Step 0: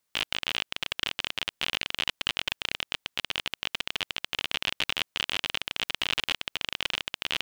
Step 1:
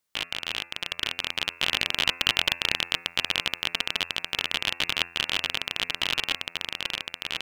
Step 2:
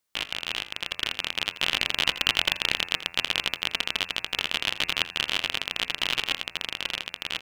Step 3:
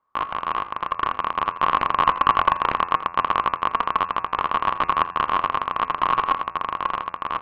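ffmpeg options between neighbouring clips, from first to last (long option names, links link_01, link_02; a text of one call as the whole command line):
ffmpeg -i in.wav -af "bandreject=frequency=85.54:width_type=h:width=4,bandreject=frequency=171.08:width_type=h:width=4,bandreject=frequency=256.62:width_type=h:width=4,bandreject=frequency=342.16:width_type=h:width=4,bandreject=frequency=427.7:width_type=h:width=4,bandreject=frequency=513.24:width_type=h:width=4,bandreject=frequency=598.78:width_type=h:width=4,bandreject=frequency=684.32:width_type=h:width=4,bandreject=frequency=769.86:width_type=h:width=4,bandreject=frequency=855.4:width_type=h:width=4,bandreject=frequency=940.94:width_type=h:width=4,bandreject=frequency=1026.48:width_type=h:width=4,bandreject=frequency=1112.02:width_type=h:width=4,bandreject=frequency=1197.56:width_type=h:width=4,bandreject=frequency=1283.1:width_type=h:width=4,bandreject=frequency=1368.64:width_type=h:width=4,bandreject=frequency=1454.18:width_type=h:width=4,bandreject=frequency=1539.72:width_type=h:width=4,bandreject=frequency=1625.26:width_type=h:width=4,bandreject=frequency=1710.8:width_type=h:width=4,bandreject=frequency=1796.34:width_type=h:width=4,bandreject=frequency=1881.88:width_type=h:width=4,bandreject=frequency=1967.42:width_type=h:width=4,bandreject=frequency=2052.96:width_type=h:width=4,bandreject=frequency=2138.5:width_type=h:width=4,bandreject=frequency=2224.04:width_type=h:width=4,bandreject=frequency=2309.58:width_type=h:width=4,bandreject=frequency=2395.12:width_type=h:width=4,bandreject=frequency=2480.66:width_type=h:width=4,bandreject=frequency=2566.2:width_type=h:width=4,bandreject=frequency=2651.74:width_type=h:width=4,bandreject=frequency=2737.28:width_type=h:width=4,dynaudnorm=framelen=320:gausssize=9:maxgain=11.5dB,volume=-1dB" out.wav
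ffmpeg -i in.wav -af "bandreject=frequency=60:width_type=h:width=6,bandreject=frequency=120:width_type=h:width=6,bandreject=frequency=180:width_type=h:width=6,aecho=1:1:83:0.188" out.wav
ffmpeg -i in.wav -af "lowpass=frequency=1100:width_type=q:width=11,volume=5.5dB" out.wav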